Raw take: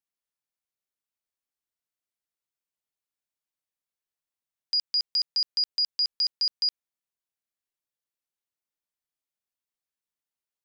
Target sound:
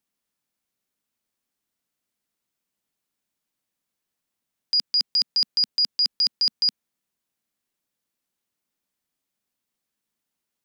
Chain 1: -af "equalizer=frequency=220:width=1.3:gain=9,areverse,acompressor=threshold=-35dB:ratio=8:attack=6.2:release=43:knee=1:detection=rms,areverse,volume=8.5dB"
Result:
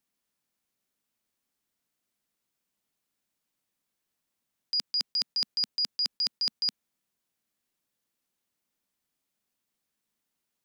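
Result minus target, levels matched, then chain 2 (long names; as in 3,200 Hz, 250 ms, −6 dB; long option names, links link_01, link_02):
downward compressor: peak gain reduction +7.5 dB
-af "equalizer=frequency=220:width=1.3:gain=9,areverse,acompressor=threshold=-26.5dB:ratio=8:attack=6.2:release=43:knee=1:detection=rms,areverse,volume=8.5dB"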